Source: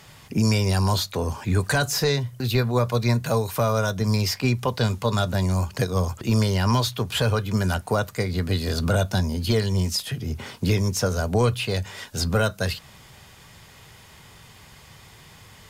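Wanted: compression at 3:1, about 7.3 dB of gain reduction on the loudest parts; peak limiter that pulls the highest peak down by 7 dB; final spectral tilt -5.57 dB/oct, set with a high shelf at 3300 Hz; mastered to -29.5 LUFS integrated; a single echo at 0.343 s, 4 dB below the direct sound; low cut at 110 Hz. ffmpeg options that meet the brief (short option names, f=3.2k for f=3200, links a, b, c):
-af "highpass=110,highshelf=f=3.3k:g=-8.5,acompressor=threshold=-28dB:ratio=3,alimiter=limit=-23dB:level=0:latency=1,aecho=1:1:343:0.631,volume=2dB"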